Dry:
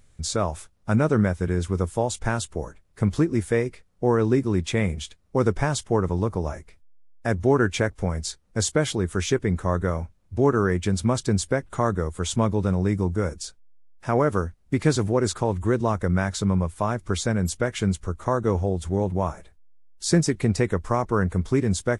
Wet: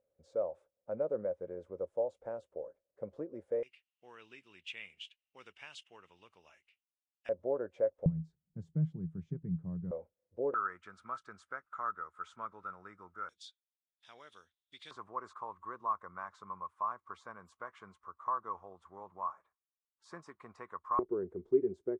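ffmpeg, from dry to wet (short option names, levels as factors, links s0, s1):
-af "asetnsamples=n=441:p=0,asendcmd='3.63 bandpass f 2800;7.29 bandpass f 550;8.06 bandpass f 160;9.91 bandpass f 510;10.54 bandpass f 1300;13.29 bandpass f 3500;14.91 bandpass f 1100;20.99 bandpass f 380',bandpass=f=540:t=q:w=11:csg=0"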